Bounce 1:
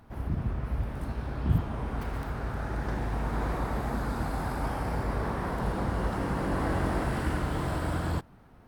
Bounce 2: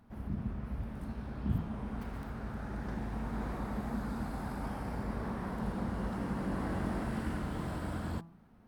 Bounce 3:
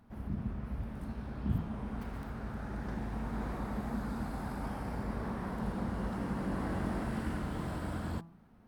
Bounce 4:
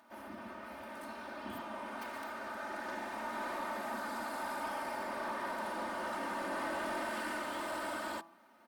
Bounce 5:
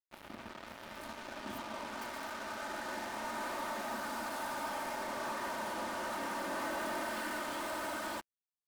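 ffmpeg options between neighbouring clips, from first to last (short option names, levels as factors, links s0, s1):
-af "equalizer=f=210:t=o:w=0.43:g=10.5,bandreject=f=166.5:t=h:w=4,bandreject=f=333:t=h:w=4,bandreject=f=499.5:t=h:w=4,bandreject=f=666:t=h:w=4,bandreject=f=832.5:t=h:w=4,bandreject=f=999:t=h:w=4,bandreject=f=1165.5:t=h:w=4,volume=0.376"
-af anull
-af "highpass=600,aecho=1:1:3.3:0.81,asoftclip=type=tanh:threshold=0.0141,volume=2"
-af "acrusher=bits=6:mix=0:aa=0.5"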